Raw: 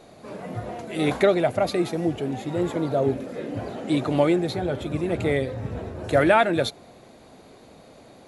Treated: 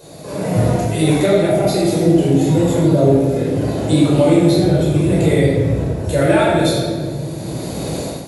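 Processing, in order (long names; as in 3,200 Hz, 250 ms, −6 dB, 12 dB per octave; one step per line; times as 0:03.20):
high-pass filter 49 Hz
high-shelf EQ 4,700 Hz +11.5 dB
rectangular room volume 980 cubic metres, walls mixed, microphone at 5.1 metres
in parallel at −1.5 dB: downward compressor, threshold −17 dBFS, peak gain reduction 13.5 dB
on the sum: parametric band 1,700 Hz −8 dB 2.7 octaves
automatic gain control gain up to 14 dB
level −1 dB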